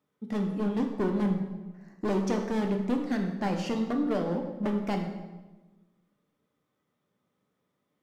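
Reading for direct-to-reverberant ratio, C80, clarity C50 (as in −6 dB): 2.0 dB, 8.0 dB, 6.0 dB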